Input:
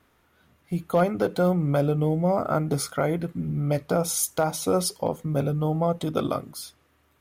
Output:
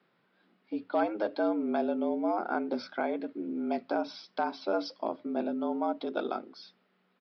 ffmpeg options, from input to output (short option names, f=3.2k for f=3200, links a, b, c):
-af "aresample=11025,aresample=44100,afreqshift=110,volume=-7dB"